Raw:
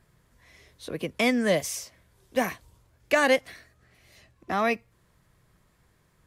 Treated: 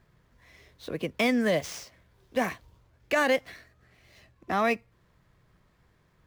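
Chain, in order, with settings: median filter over 5 samples; peak limiter -15.5 dBFS, peak gain reduction 5 dB

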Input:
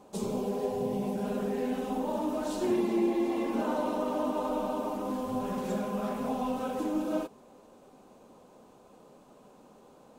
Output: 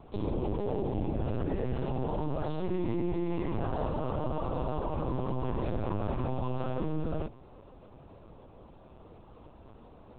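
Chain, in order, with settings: octave divider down 1 oct, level +4 dB; peak limiter -25.5 dBFS, peak gain reduction 11 dB; LPC vocoder at 8 kHz pitch kept; trim +1.5 dB

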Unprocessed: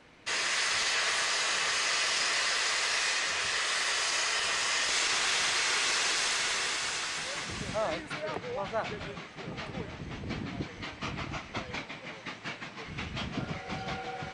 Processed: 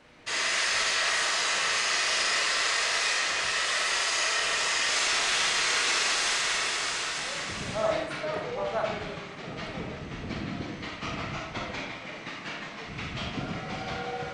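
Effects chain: algorithmic reverb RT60 0.74 s, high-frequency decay 0.6×, pre-delay 5 ms, DRR 0 dB

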